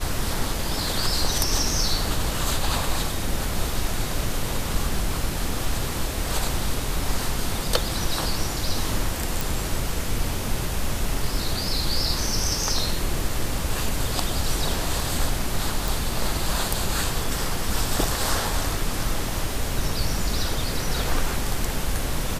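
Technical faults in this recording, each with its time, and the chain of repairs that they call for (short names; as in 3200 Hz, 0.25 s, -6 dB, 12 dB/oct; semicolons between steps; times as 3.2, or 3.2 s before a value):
9.41 pop
15.88 pop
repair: de-click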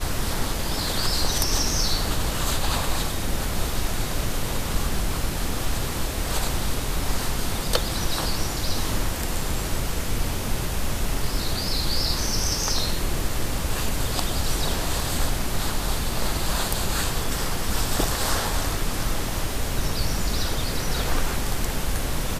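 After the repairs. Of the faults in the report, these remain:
none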